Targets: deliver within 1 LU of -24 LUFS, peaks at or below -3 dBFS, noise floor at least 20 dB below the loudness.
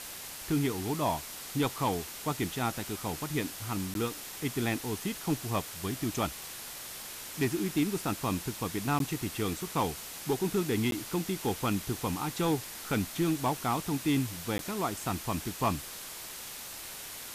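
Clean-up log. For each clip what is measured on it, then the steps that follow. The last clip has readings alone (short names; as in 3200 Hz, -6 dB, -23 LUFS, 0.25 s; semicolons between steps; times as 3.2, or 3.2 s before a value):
dropouts 4; longest dropout 12 ms; noise floor -43 dBFS; noise floor target -53 dBFS; loudness -32.5 LUFS; peak -19.0 dBFS; loudness target -24.0 LUFS
-> interpolate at 3.94/8.99/10.91/14.58, 12 ms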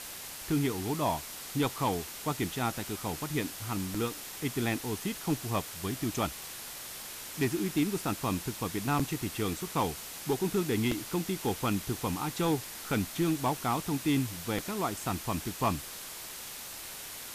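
dropouts 0; noise floor -43 dBFS; noise floor target -53 dBFS
-> denoiser 10 dB, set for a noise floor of -43 dBFS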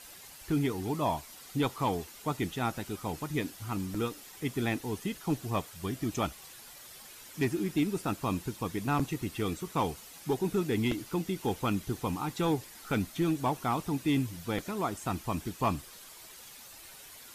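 noise floor -50 dBFS; noise floor target -53 dBFS
-> denoiser 6 dB, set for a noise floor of -50 dBFS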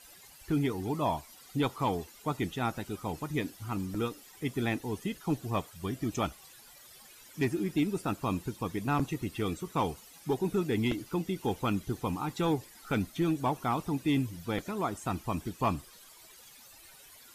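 noise floor -54 dBFS; loudness -33.0 LUFS; peak -16.5 dBFS; loudness target -24.0 LUFS
-> gain +9 dB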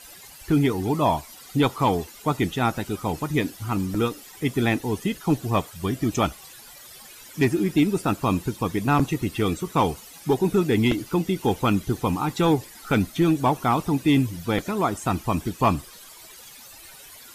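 loudness -24.0 LUFS; peak -7.5 dBFS; noise floor -45 dBFS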